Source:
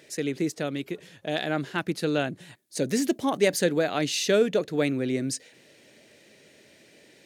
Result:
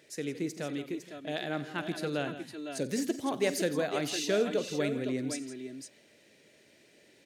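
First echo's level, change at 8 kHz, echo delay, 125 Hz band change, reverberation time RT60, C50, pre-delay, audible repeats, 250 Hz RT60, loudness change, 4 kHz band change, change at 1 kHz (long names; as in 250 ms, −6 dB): −17.0 dB, −6.0 dB, 48 ms, −6.5 dB, no reverb audible, no reverb audible, no reverb audible, 4, no reverb audible, −6.5 dB, −6.0 dB, −6.0 dB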